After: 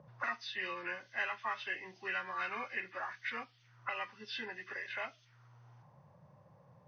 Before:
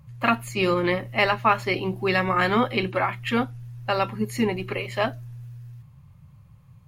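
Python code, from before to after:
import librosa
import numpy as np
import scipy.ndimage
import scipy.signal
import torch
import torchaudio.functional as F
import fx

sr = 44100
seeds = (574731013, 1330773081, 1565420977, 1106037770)

y = fx.freq_compress(x, sr, knee_hz=1000.0, ratio=1.5)
y = fx.auto_wah(y, sr, base_hz=500.0, top_hz=3300.0, q=2.2, full_db=-27.0, direction='up')
y = fx.band_squash(y, sr, depth_pct=40)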